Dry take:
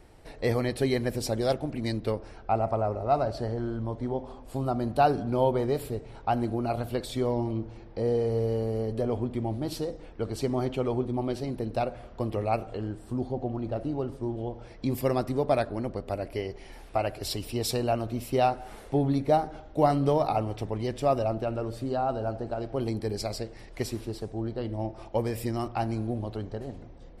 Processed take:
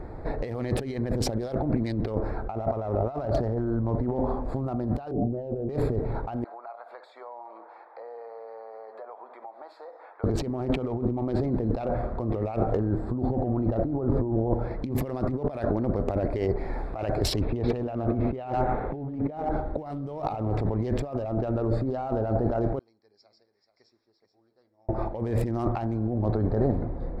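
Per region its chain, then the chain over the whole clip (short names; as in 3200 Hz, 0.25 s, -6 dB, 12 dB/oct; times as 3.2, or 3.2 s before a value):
5.11–5.69 steep low-pass 750 Hz 72 dB/oct + notches 50/100/150/200/250 Hz
6.44–10.24 HPF 810 Hz 24 dB/oct + high shelf 2600 Hz -11 dB + compressor 4:1, threshold -55 dBFS
13.84–14.54 LPF 2900 Hz 6 dB/oct + negative-ratio compressor -41 dBFS
17.41–19.49 LPF 3100 Hz 24 dB/oct + feedback echo 0.12 s, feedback 38%, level -12 dB
22.79–24.89 band-pass 5600 Hz, Q 17 + air absorption 110 m + echo 0.433 s -9.5 dB
whole clip: Wiener smoothing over 15 samples; negative-ratio compressor -37 dBFS, ratio -1; high shelf 4900 Hz -11 dB; gain +9 dB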